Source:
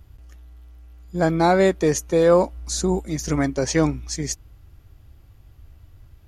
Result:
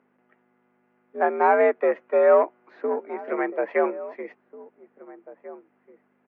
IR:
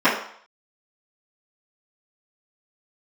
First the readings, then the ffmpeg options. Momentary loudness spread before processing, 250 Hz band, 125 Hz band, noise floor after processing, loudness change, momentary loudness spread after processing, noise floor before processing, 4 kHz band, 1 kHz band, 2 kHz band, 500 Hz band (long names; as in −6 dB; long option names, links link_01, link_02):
11 LU, −11.5 dB, below −35 dB, −68 dBFS, −1.5 dB, 18 LU, −51 dBFS, below −25 dB, +1.5 dB, 0.0 dB, −0.5 dB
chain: -filter_complex "[0:a]aeval=exprs='0.473*(cos(1*acos(clip(val(0)/0.473,-1,1)))-cos(1*PI/2))+0.0168*(cos(7*acos(clip(val(0)/0.473,-1,1)))-cos(7*PI/2))':channel_layout=same,highpass=frequency=170:width_type=q:width=0.5412,highpass=frequency=170:width_type=q:width=1.307,lowpass=frequency=2200:width_type=q:width=0.5176,lowpass=frequency=2200:width_type=q:width=0.7071,lowpass=frequency=2200:width_type=q:width=1.932,afreqshift=69,aeval=exprs='val(0)+0.00562*(sin(2*PI*50*n/s)+sin(2*PI*2*50*n/s)/2+sin(2*PI*3*50*n/s)/3+sin(2*PI*4*50*n/s)/4+sin(2*PI*5*50*n/s)/5)':channel_layout=same,asplit=2[link_01][link_02];[link_02]adelay=1691,volume=-17dB,highshelf=frequency=4000:gain=-38[link_03];[link_01][link_03]amix=inputs=2:normalize=0,acrossover=split=310[link_04][link_05];[link_04]acrusher=bits=2:mix=0:aa=0.5[link_06];[link_06][link_05]amix=inputs=2:normalize=0"